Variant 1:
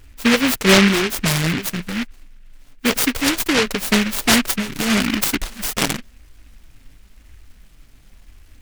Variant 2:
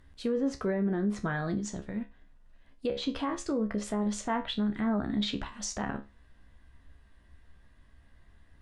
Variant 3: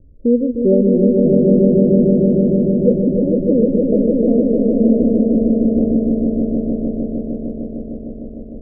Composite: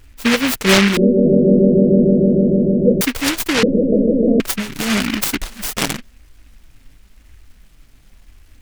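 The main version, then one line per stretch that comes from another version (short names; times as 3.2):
1
0.97–3.01 from 3
3.63–4.4 from 3
not used: 2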